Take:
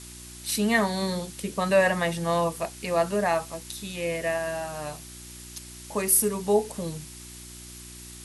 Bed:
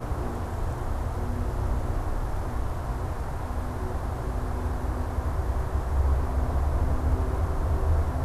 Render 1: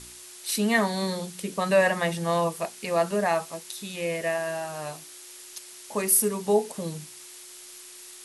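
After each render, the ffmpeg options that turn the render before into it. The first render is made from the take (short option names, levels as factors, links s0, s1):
-af "bandreject=f=60:t=h:w=4,bandreject=f=120:t=h:w=4,bandreject=f=180:t=h:w=4,bandreject=f=240:t=h:w=4,bandreject=f=300:t=h:w=4"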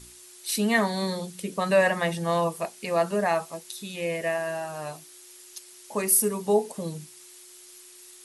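-af "afftdn=nr=6:nf=-46"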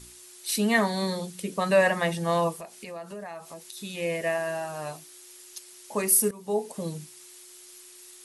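-filter_complex "[0:a]asettb=1/sr,asplit=3[s0][s1][s2];[s0]atrim=end=2.534[s3];[s1]atrim=start=2.53:end=3.77,asetpts=PTS-STARTPTS,afade=t=in:d=0.004:c=qsin,afade=t=out:st=1.236:d=0.004:c=qsin,acompressor=threshold=0.0126:ratio=4:attack=3.2:release=140:knee=1:detection=peak[s4];[s2]atrim=start=3.766[s5];[s3][s4]acrossfade=d=0.004:c1=hsin:c2=qsin[s6];[s6][s5]acrossfade=d=0.004:c1=qsin:c2=hsin,asplit=2[s7][s8];[s7]atrim=end=6.31,asetpts=PTS-STARTPTS,afade=t=out:st=6.306:d=0.004:c=hsin:silence=0.133352[s9];[s8]atrim=start=6.31,asetpts=PTS-STARTPTS,afade=t=in:d=0.51:silence=0.133352[s10];[s9][s10]concat=n=2:v=0:a=1"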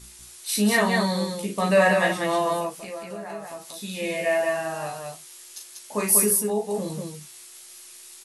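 -filter_complex "[0:a]asplit=2[s0][s1];[s1]adelay=15,volume=0.562[s2];[s0][s2]amix=inputs=2:normalize=0,aecho=1:1:37.9|192.4:0.562|0.708"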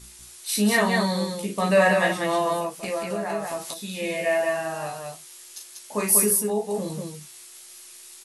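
-filter_complex "[0:a]asettb=1/sr,asplit=3[s0][s1][s2];[s0]atrim=end=2.834[s3];[s1]atrim=start=2.83:end=3.74,asetpts=PTS-STARTPTS,afade=t=in:d=0.004:c=qsin,afade=t=out:st=0.906:d=0.004:c=qsin,acontrast=78[s4];[s2]atrim=start=3.736[s5];[s3][s4]acrossfade=d=0.004:c1=hsin:c2=qsin[s6];[s6][s5]acrossfade=d=0.004:c1=qsin:c2=hsin"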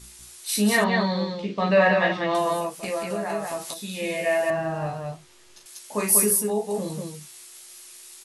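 -filter_complex "[0:a]asettb=1/sr,asplit=3[s0][s1][s2];[s0]atrim=end=0.844[s3];[s1]atrim=start=0.84:end=2.35,asetpts=PTS-STARTPTS,afade=t=in:d=0.004:c=qsin,afade=t=out:st=1.506:d=0.004:c=qsin,lowpass=f=4500:w=0.5412,lowpass=f=4500:w=1.3066[s4];[s2]atrim=start=2.346[s5];[s3][s4]acrossfade=d=0.004:c1=hsin:c2=qsin[s6];[s6][s5]acrossfade=d=0.004:c1=qsin:c2=hsin,asettb=1/sr,asplit=3[s7][s8][s9];[s7]atrim=end=4.504[s10];[s8]atrim=start=4.5:end=5.66,asetpts=PTS-STARTPTS,afade=t=in:d=0.004:c=qsin,afade=t=out:st=1.156:d=0.004:c=qsin,aemphasis=mode=reproduction:type=riaa[s11];[s9]atrim=start=5.656[s12];[s10][s11]acrossfade=d=0.004:c1=hsin:c2=qsin[s13];[s13][s12]acrossfade=d=0.004:c1=qsin:c2=hsin"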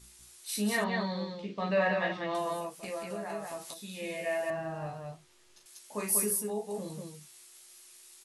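-af "volume=0.335"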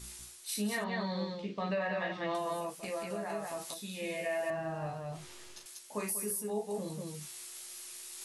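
-af "areverse,acompressor=mode=upward:threshold=0.0141:ratio=2.5,areverse,alimiter=level_in=1.19:limit=0.0631:level=0:latency=1:release=210,volume=0.841"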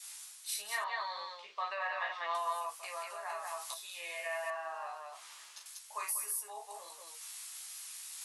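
-af "highpass=f=770:w=0.5412,highpass=f=770:w=1.3066,adynamicequalizer=threshold=0.00112:dfrequency=1100:dqfactor=3.6:tfrequency=1100:tqfactor=3.6:attack=5:release=100:ratio=0.375:range=4:mode=boostabove:tftype=bell"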